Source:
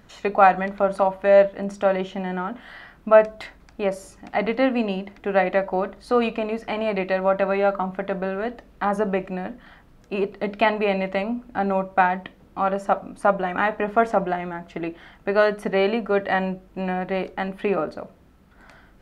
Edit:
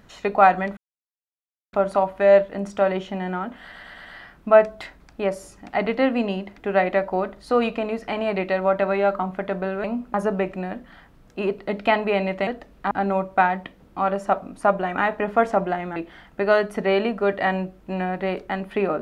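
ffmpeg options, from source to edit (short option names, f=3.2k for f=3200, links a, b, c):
-filter_complex "[0:a]asplit=11[a][b][c][d][e][f][g][h][i][j][k];[a]atrim=end=0.77,asetpts=PTS-STARTPTS,afade=t=out:st=0.766:d=0.004:c=hsin,apad=pad_dur=0.96[l];[b]atrim=start=0.77:end=2.762,asetpts=PTS-STARTPTS,afade=t=in:d=0.004:c=hsin[m];[c]atrim=start=2.648:end=2.762[n];[d]atrim=start=2.648:end=2.762[o];[e]atrim=start=2.648:end=2.762[p];[f]atrim=start=2.648:end=8.442[q];[g]atrim=start=11.208:end=11.512[r];[h]atrim=start=8.878:end=11.212[s];[i]atrim=start=8.438:end=8.882[t];[j]atrim=start=11.508:end=14.562[u];[k]atrim=start=14.838[v];[l][m]concat=n=2:v=0:a=1[w];[w][n]acrossfade=d=0.004:c1=hsin:c2=hsin[x];[x][o]acrossfade=d=0.004:c1=hsin:c2=hsin[y];[y][p]acrossfade=d=0.004:c1=hsin:c2=hsin[z];[z][q]acrossfade=d=0.004:c1=hsin:c2=hsin[aa];[aa][r]acrossfade=d=0.004:c1=hsin:c2=hsin[ab];[ab][s]acrossfade=d=0.004:c1=hsin:c2=hsin[ac];[ac][t]acrossfade=d=0.004:c1=hsin:c2=hsin[ad];[ad][u]acrossfade=d=0.004:c1=hsin:c2=hsin[ae];[ae][v]acrossfade=d=0.004:c1=hsin:c2=hsin"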